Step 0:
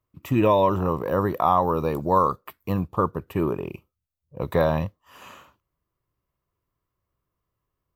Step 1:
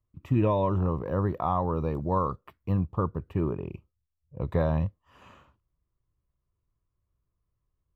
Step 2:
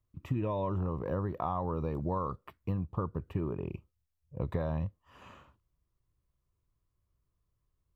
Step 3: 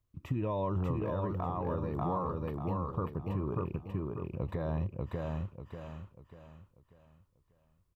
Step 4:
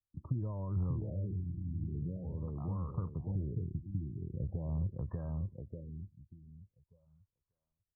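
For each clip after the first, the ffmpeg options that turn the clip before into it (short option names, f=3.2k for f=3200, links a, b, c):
-af "aemphasis=mode=reproduction:type=bsi,volume=-8.5dB"
-af "acompressor=threshold=-29dB:ratio=6"
-af "aecho=1:1:591|1182|1773|2364|2955:0.708|0.255|0.0917|0.033|0.0119,alimiter=limit=-23.5dB:level=0:latency=1:release=166"
-filter_complex "[0:a]afftdn=nr=21:nf=-48,acrossover=split=180[a][b];[b]acompressor=threshold=-47dB:ratio=10[c];[a][c]amix=inputs=2:normalize=0,afftfilt=real='re*lt(b*sr/1024,340*pow(1900/340,0.5+0.5*sin(2*PI*0.44*pts/sr)))':imag='im*lt(b*sr/1024,340*pow(1900/340,0.5+0.5*sin(2*PI*0.44*pts/sr)))':win_size=1024:overlap=0.75,volume=1dB"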